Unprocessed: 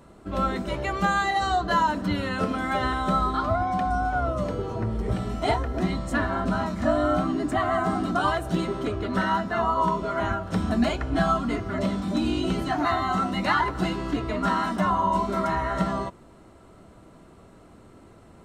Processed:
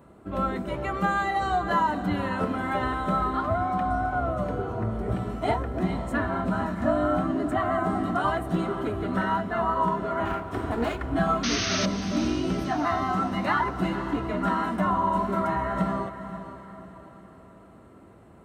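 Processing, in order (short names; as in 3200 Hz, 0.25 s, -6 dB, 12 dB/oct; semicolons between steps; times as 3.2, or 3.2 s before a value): 10.25–11.06 minimum comb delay 2.8 ms; HPF 58 Hz; bell 5300 Hz -10.5 dB 1.5 oct; 11.43–11.86 painted sound noise 1100–6500 Hz -28 dBFS; diffused feedback echo 0.48 s, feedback 46%, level -11.5 dB; gain -1 dB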